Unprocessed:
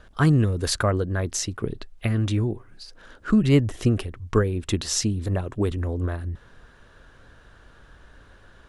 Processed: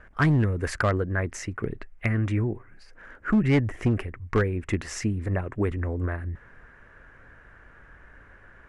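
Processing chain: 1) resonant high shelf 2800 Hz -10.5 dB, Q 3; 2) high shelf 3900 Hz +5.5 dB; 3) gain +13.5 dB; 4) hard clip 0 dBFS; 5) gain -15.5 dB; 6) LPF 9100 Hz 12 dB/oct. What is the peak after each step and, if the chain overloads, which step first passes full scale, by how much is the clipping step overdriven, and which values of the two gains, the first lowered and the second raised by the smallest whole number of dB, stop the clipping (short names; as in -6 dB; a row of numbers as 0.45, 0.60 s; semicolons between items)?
-6.0, -6.0, +7.5, 0.0, -15.5, -15.0 dBFS; step 3, 7.5 dB; step 3 +5.5 dB, step 5 -7.5 dB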